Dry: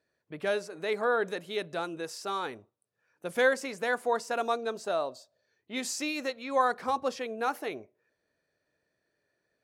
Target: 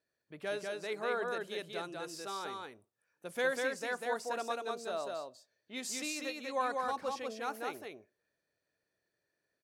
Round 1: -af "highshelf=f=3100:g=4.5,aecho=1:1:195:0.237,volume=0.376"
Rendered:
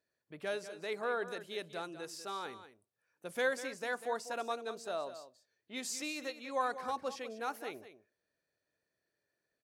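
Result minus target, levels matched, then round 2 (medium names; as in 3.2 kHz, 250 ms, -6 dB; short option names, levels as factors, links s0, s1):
echo-to-direct -9.5 dB
-af "highshelf=f=3100:g=4.5,aecho=1:1:195:0.708,volume=0.376"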